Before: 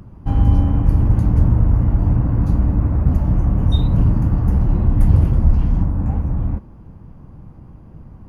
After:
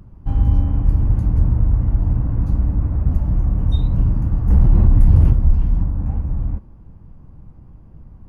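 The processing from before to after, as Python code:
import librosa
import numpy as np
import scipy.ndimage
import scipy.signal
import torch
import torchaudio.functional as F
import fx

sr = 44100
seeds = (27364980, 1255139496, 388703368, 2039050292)

y = fx.low_shelf(x, sr, hz=72.0, db=10.0)
y = fx.env_flatten(y, sr, amount_pct=70, at=(4.5, 5.33))
y = y * librosa.db_to_amplitude(-7.0)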